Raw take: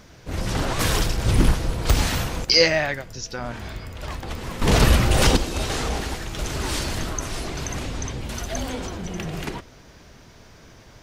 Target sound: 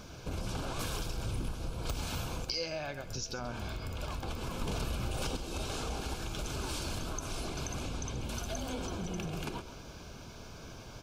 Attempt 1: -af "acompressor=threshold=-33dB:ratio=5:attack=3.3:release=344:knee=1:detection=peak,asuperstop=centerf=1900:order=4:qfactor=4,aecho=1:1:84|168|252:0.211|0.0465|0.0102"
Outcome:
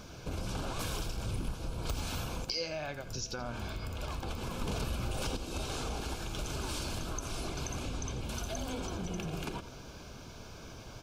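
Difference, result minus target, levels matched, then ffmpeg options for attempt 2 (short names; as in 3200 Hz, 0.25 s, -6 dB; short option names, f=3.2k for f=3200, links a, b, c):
echo 50 ms early
-af "acompressor=threshold=-33dB:ratio=5:attack=3.3:release=344:knee=1:detection=peak,asuperstop=centerf=1900:order=4:qfactor=4,aecho=1:1:134|268|402:0.211|0.0465|0.0102"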